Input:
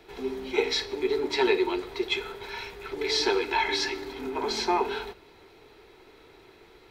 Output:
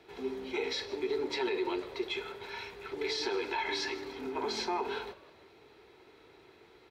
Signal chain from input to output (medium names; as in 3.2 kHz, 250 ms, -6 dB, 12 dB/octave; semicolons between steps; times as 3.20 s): high-pass 69 Hz 12 dB/octave; on a send: frequency-shifting echo 159 ms, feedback 47%, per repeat +82 Hz, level -22 dB; on the sum: peak limiter -19.5 dBFS, peak gain reduction 8.5 dB; treble shelf 8.8 kHz -7 dB; trim -4.5 dB